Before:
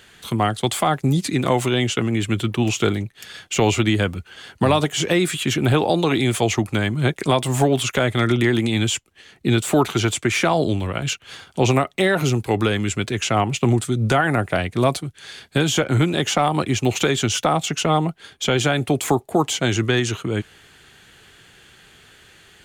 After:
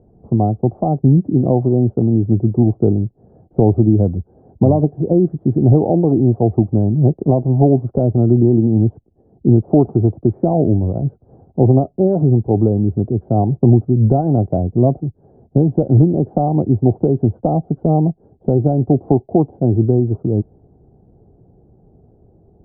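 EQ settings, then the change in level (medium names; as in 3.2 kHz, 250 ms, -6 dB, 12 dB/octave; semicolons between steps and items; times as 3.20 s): elliptic low-pass 750 Hz, stop band 70 dB; bass shelf 500 Hz +11.5 dB; -2.0 dB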